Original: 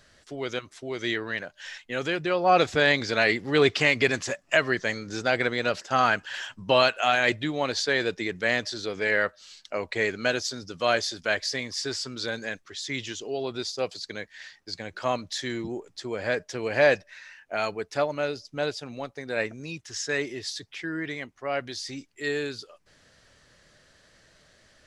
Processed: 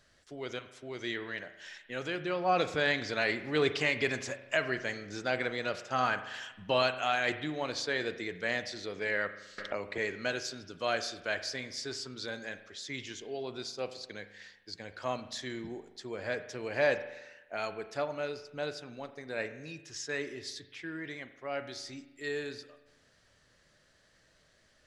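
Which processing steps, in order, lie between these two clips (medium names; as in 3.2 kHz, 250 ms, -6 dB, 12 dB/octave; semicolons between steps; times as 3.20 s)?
spring tank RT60 1 s, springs 39 ms, chirp 65 ms, DRR 10.5 dB; 9.58–9.98 s: three bands compressed up and down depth 100%; trim -8 dB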